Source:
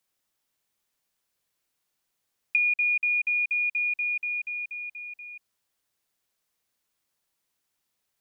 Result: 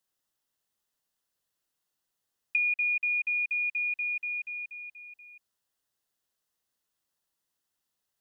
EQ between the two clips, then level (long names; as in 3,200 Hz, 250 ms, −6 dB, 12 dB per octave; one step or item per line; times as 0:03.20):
notch filter 2,300 Hz, Q 5.5
dynamic equaliser 2,100 Hz, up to +7 dB, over −44 dBFS, Q 1.4
−4.0 dB